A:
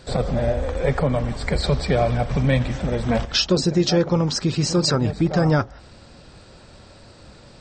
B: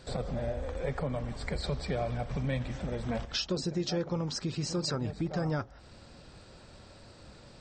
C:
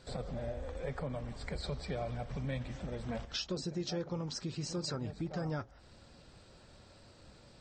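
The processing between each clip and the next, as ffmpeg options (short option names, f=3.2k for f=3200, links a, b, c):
-af "acompressor=threshold=-34dB:ratio=1.5,volume=-6.5dB"
-af "volume=-5.5dB" -ar 44100 -c:a libvorbis -b:a 48k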